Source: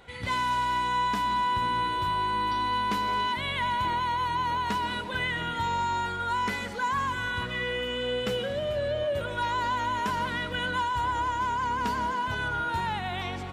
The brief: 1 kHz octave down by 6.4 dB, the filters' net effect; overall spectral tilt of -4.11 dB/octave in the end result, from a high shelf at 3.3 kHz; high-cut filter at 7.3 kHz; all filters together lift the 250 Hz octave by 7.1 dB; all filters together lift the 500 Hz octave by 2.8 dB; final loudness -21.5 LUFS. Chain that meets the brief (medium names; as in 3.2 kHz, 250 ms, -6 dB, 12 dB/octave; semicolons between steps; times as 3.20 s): low-pass 7.3 kHz; peaking EQ 250 Hz +8.5 dB; peaking EQ 500 Hz +3.5 dB; peaking EQ 1 kHz -7 dB; treble shelf 3.3 kHz -8 dB; trim +9 dB